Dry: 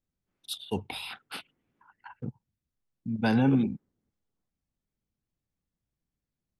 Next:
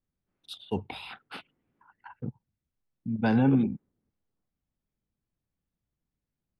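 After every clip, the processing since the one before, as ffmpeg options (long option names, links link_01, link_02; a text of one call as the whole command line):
ffmpeg -i in.wav -af "aemphasis=mode=reproduction:type=75fm" out.wav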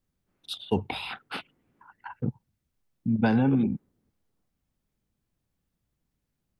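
ffmpeg -i in.wav -af "acompressor=threshold=-25dB:ratio=10,volume=6.5dB" out.wav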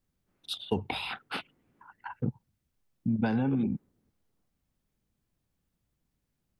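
ffmpeg -i in.wav -af "acompressor=threshold=-24dB:ratio=6" out.wav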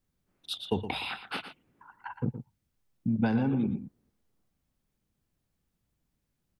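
ffmpeg -i in.wav -af "aecho=1:1:117:0.282" out.wav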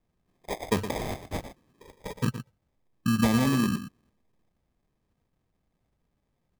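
ffmpeg -i in.wav -af "acrusher=samples=31:mix=1:aa=0.000001,volume=3.5dB" out.wav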